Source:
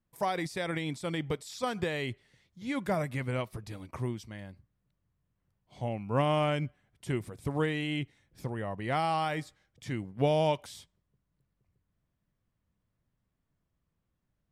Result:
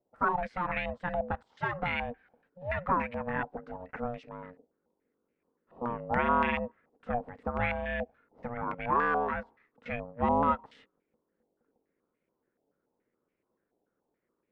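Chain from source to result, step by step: ring modulator 360 Hz; step-sequenced low-pass 7 Hz 760–2300 Hz

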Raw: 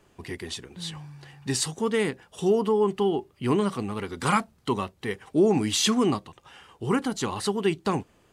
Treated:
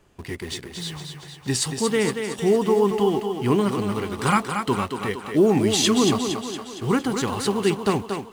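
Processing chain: bass shelf 92 Hz +6 dB; in parallel at -9.5 dB: bit crusher 6-bit; on the sum: thinning echo 231 ms, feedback 58%, high-pass 190 Hz, level -6 dB

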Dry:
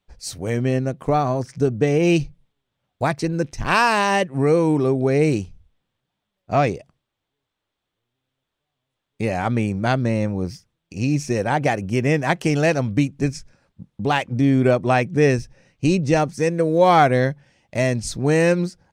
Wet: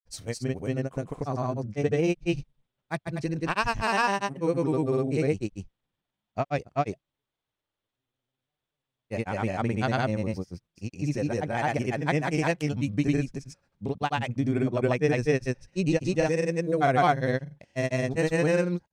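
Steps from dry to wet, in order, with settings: granulator, spray 212 ms, pitch spread up and down by 0 st; trim -6 dB

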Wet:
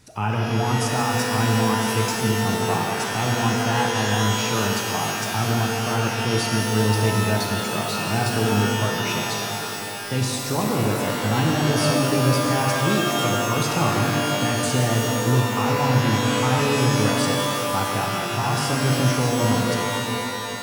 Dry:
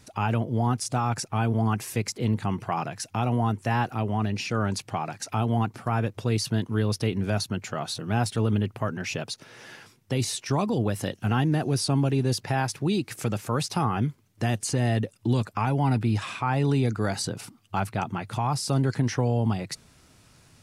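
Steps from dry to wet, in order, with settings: pitch-shifted reverb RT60 3 s, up +12 st, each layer -2 dB, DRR -0.5 dB

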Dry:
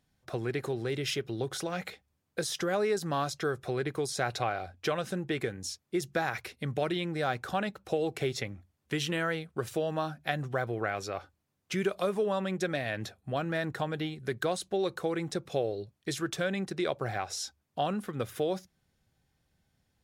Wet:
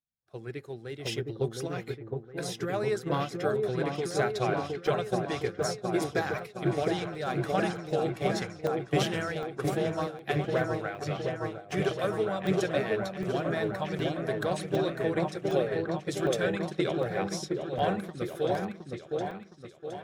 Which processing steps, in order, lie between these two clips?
coarse spectral quantiser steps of 15 dB; in parallel at +1.5 dB: compression, threshold -39 dBFS, peak gain reduction 14.5 dB; on the sum: delay with an opening low-pass 715 ms, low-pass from 750 Hz, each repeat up 1 oct, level 0 dB; expander -21 dBFS; on a send at -23 dB: reverberation RT60 0.50 s, pre-delay 3 ms; on the sum: crackling interface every 0.76 s, samples 64, zero, from 0.31 s

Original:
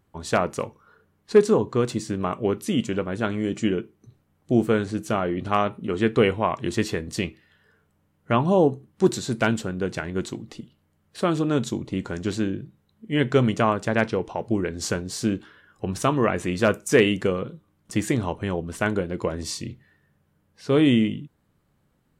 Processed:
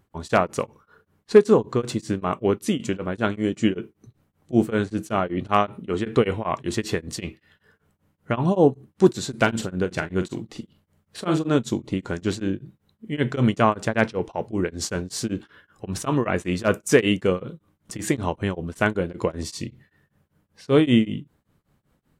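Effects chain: 9.38–11.57 s: doubling 44 ms -9 dB; tremolo of two beating tones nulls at 5.2 Hz; trim +3.5 dB

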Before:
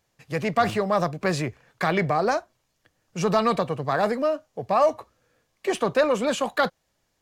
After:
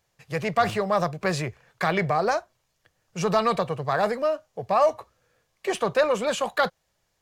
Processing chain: peaking EQ 270 Hz -9.5 dB 0.51 oct

